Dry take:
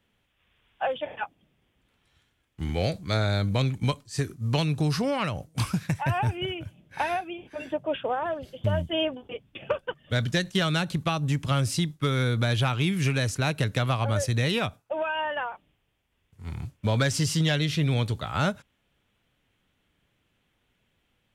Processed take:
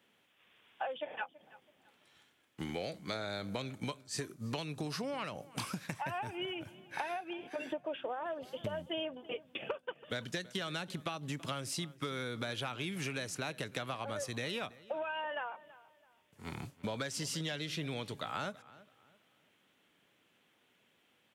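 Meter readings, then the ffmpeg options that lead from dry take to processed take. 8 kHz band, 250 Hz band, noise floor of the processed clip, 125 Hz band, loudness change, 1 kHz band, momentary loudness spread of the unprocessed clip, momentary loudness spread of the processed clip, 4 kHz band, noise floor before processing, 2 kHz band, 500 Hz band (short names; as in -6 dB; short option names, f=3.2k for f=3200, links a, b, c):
-8.0 dB, -12.5 dB, -72 dBFS, -19.0 dB, -12.0 dB, -10.0 dB, 11 LU, 5 LU, -9.5 dB, -73 dBFS, -10.0 dB, -10.0 dB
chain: -filter_complex "[0:a]highpass=240,acompressor=threshold=-39dB:ratio=6,asplit=2[a][b];[b]adelay=330,lowpass=f=3.2k:p=1,volume=-19dB,asplit=2[c][d];[d]adelay=330,lowpass=f=3.2k:p=1,volume=0.33,asplit=2[e][f];[f]adelay=330,lowpass=f=3.2k:p=1,volume=0.33[g];[c][e][g]amix=inputs=3:normalize=0[h];[a][h]amix=inputs=2:normalize=0,volume=2.5dB"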